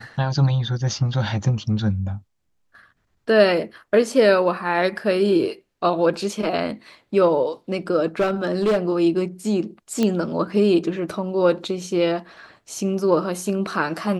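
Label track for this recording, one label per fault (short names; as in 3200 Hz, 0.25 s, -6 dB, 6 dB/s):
8.200000	8.780000	clipped -15 dBFS
10.030000	10.030000	pop -9 dBFS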